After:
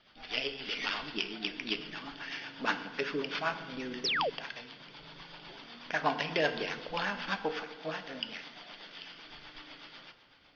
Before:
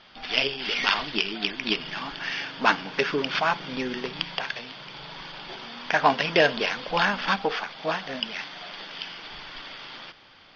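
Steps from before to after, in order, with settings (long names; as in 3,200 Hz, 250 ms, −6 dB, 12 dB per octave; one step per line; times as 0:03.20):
rotating-speaker cabinet horn 8 Hz
feedback delay network reverb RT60 1.3 s, low-frequency decay 1.25×, high-frequency decay 0.55×, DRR 8.5 dB
sound drawn into the spectrogram fall, 0:04.04–0:04.30, 400–6,100 Hz −23 dBFS
level −7.5 dB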